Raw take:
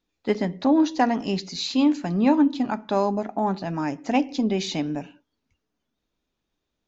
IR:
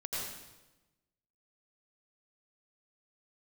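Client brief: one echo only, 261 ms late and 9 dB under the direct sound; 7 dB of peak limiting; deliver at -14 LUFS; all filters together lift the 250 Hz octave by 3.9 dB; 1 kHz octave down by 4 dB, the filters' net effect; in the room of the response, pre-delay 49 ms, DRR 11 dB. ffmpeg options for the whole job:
-filter_complex "[0:a]equalizer=f=250:t=o:g=5,equalizer=f=1000:t=o:g=-6,alimiter=limit=0.211:level=0:latency=1,aecho=1:1:261:0.355,asplit=2[s0][s1];[1:a]atrim=start_sample=2205,adelay=49[s2];[s1][s2]afir=irnorm=-1:irlink=0,volume=0.2[s3];[s0][s3]amix=inputs=2:normalize=0,volume=2.82"

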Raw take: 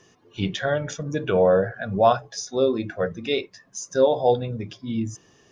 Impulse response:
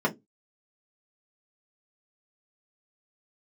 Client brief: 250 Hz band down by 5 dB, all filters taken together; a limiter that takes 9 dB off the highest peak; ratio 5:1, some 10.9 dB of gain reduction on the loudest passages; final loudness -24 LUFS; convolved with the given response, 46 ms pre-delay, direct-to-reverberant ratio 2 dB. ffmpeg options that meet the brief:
-filter_complex "[0:a]equalizer=f=250:t=o:g=-7,acompressor=threshold=0.0501:ratio=5,alimiter=level_in=1.06:limit=0.0631:level=0:latency=1,volume=0.944,asplit=2[s0][s1];[1:a]atrim=start_sample=2205,adelay=46[s2];[s1][s2]afir=irnorm=-1:irlink=0,volume=0.2[s3];[s0][s3]amix=inputs=2:normalize=0,volume=2.37"

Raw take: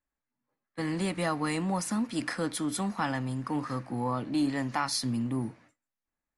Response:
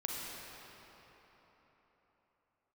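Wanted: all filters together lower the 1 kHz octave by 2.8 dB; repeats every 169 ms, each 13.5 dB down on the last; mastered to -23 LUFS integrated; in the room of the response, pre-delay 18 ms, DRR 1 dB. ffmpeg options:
-filter_complex "[0:a]equalizer=f=1000:t=o:g=-3.5,aecho=1:1:169|338:0.211|0.0444,asplit=2[s0][s1];[1:a]atrim=start_sample=2205,adelay=18[s2];[s1][s2]afir=irnorm=-1:irlink=0,volume=0.631[s3];[s0][s3]amix=inputs=2:normalize=0,volume=2.11"

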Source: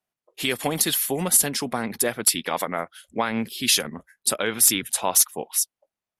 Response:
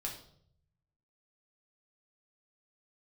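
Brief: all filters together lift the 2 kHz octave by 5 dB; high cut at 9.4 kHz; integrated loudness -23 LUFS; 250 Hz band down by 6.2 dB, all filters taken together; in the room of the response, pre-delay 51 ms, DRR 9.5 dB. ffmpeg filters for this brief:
-filter_complex "[0:a]lowpass=9400,equalizer=f=250:t=o:g=-8,equalizer=f=2000:t=o:g=6.5,asplit=2[s0][s1];[1:a]atrim=start_sample=2205,adelay=51[s2];[s1][s2]afir=irnorm=-1:irlink=0,volume=0.335[s3];[s0][s3]amix=inputs=2:normalize=0"

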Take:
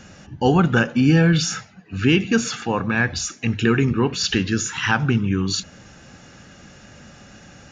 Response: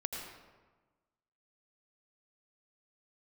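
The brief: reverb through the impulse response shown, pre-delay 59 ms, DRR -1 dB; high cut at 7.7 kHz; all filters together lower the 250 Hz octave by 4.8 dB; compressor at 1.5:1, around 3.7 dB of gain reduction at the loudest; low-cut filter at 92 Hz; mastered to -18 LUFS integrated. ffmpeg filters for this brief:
-filter_complex "[0:a]highpass=92,lowpass=7700,equalizer=f=250:t=o:g=-6.5,acompressor=threshold=0.0631:ratio=1.5,asplit=2[s0][s1];[1:a]atrim=start_sample=2205,adelay=59[s2];[s1][s2]afir=irnorm=-1:irlink=0,volume=0.944[s3];[s0][s3]amix=inputs=2:normalize=0,volume=1.5"

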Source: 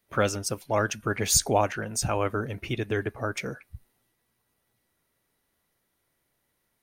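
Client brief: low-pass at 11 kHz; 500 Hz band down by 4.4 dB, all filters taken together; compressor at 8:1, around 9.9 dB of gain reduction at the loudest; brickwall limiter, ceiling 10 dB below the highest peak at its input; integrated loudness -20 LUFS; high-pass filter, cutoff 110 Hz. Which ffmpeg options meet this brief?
-af "highpass=110,lowpass=11000,equalizer=f=500:t=o:g=-5.5,acompressor=threshold=0.0355:ratio=8,volume=8.41,alimiter=limit=0.376:level=0:latency=1"

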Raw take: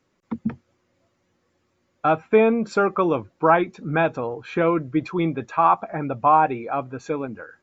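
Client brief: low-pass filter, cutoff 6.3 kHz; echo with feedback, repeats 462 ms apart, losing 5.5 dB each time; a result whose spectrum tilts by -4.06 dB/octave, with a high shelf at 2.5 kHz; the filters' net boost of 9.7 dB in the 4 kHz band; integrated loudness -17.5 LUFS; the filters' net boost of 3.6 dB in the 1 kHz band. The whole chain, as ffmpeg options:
-af "lowpass=6300,equalizer=f=1000:t=o:g=3,highshelf=f=2500:g=7.5,equalizer=f=4000:t=o:g=6,aecho=1:1:462|924|1386|1848|2310|2772|3234:0.531|0.281|0.149|0.079|0.0419|0.0222|0.0118,volume=1.06"

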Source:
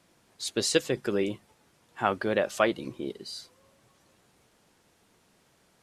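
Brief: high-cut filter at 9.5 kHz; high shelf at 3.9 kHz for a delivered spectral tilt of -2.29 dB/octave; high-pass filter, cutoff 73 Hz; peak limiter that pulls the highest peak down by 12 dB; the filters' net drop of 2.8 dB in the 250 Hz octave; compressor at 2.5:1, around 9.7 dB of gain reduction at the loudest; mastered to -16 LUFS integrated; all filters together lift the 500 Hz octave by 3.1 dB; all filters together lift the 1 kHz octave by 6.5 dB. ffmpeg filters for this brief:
-af "highpass=73,lowpass=9500,equalizer=f=250:t=o:g=-6.5,equalizer=f=500:t=o:g=3,equalizer=f=1000:t=o:g=8,highshelf=f=3900:g=6.5,acompressor=threshold=0.0355:ratio=2.5,volume=11.2,alimiter=limit=0.708:level=0:latency=1"

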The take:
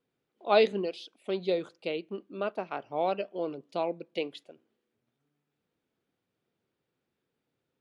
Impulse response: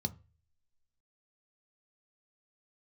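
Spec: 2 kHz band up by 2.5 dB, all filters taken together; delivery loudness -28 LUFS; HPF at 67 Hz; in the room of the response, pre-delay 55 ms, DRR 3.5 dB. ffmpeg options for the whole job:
-filter_complex "[0:a]highpass=67,equalizer=f=2000:t=o:g=3.5,asplit=2[s0][s1];[1:a]atrim=start_sample=2205,adelay=55[s2];[s1][s2]afir=irnorm=-1:irlink=0,volume=0.631[s3];[s0][s3]amix=inputs=2:normalize=0,volume=1.06"

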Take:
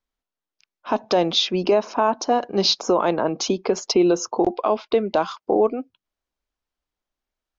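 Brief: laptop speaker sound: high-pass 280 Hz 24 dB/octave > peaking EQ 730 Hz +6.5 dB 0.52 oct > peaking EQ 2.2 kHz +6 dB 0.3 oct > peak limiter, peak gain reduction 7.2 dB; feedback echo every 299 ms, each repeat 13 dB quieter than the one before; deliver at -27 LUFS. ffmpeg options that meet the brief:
-af "highpass=f=280:w=0.5412,highpass=f=280:w=1.3066,equalizer=f=730:t=o:w=0.52:g=6.5,equalizer=f=2200:t=o:w=0.3:g=6,aecho=1:1:299|598|897:0.224|0.0493|0.0108,volume=0.596,alimiter=limit=0.168:level=0:latency=1"

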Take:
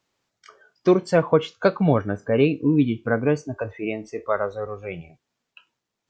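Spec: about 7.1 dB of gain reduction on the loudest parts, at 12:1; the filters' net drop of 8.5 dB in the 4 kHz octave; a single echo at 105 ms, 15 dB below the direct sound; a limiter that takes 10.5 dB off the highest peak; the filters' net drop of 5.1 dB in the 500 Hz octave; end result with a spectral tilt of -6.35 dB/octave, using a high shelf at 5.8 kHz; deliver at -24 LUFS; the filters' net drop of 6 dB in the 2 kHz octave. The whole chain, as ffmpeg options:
-af "equalizer=f=500:t=o:g=-6,equalizer=f=2000:t=o:g=-6.5,equalizer=f=4000:t=o:g=-7.5,highshelf=f=5800:g=-4,acompressor=threshold=0.0794:ratio=12,alimiter=limit=0.0794:level=0:latency=1,aecho=1:1:105:0.178,volume=2.99"

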